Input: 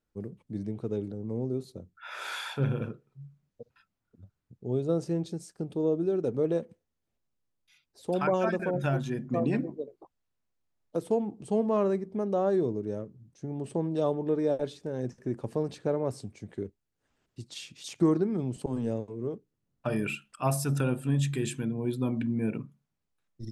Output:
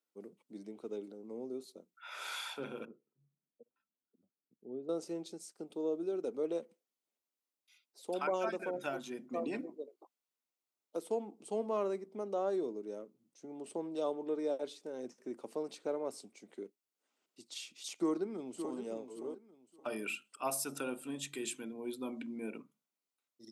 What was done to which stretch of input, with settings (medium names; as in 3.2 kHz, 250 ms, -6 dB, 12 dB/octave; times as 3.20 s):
2.85–4.89 s: band-pass filter 180 Hz, Q 0.76
17.94–18.77 s: echo throw 570 ms, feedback 25%, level -8.5 dB
whole clip: high-pass 240 Hz 24 dB/octave; tilt EQ +1.5 dB/octave; band-stop 1.7 kHz, Q 7.2; trim -6 dB